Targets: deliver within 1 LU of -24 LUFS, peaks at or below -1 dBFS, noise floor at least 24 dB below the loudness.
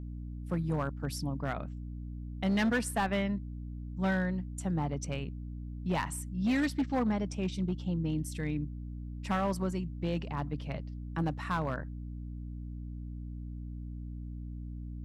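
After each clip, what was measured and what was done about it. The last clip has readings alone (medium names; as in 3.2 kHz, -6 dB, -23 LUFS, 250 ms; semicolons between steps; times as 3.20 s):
clipped samples 1.5%; clipping level -24.5 dBFS; hum 60 Hz; highest harmonic 300 Hz; hum level -38 dBFS; loudness -35.0 LUFS; peak level -24.5 dBFS; loudness target -24.0 LUFS
-> clip repair -24.5 dBFS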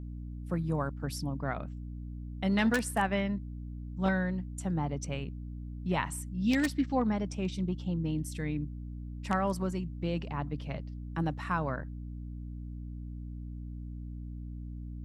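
clipped samples 0.0%; hum 60 Hz; highest harmonic 300 Hz; hum level -38 dBFS
-> de-hum 60 Hz, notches 5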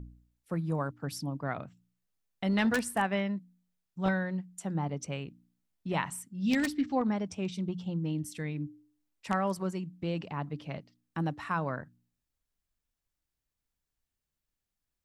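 hum not found; loudness -33.5 LUFS; peak level -15.5 dBFS; loudness target -24.0 LUFS
-> trim +9.5 dB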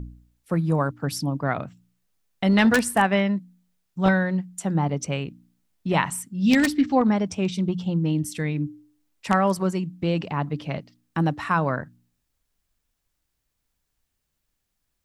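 loudness -24.0 LUFS; peak level -6.0 dBFS; noise floor -78 dBFS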